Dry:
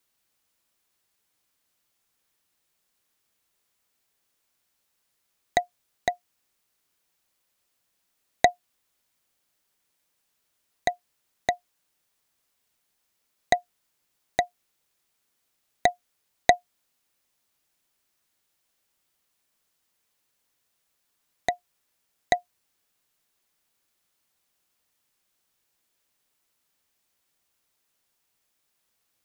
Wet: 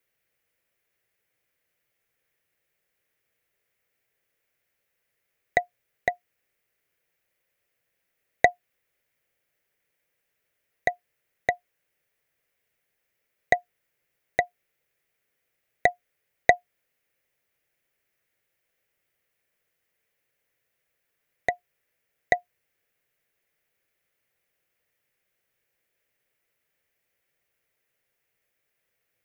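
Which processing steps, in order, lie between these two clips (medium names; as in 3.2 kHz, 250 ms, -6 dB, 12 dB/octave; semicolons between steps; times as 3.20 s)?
graphic EQ 125/250/500/1000/2000/4000/8000 Hz +5/-5/+9/-8/+10/-7/-6 dB; trim -2 dB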